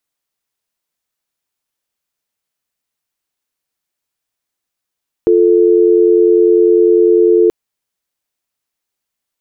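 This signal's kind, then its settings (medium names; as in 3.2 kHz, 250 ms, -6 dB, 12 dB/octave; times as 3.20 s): call progress tone dial tone, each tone -9 dBFS 2.23 s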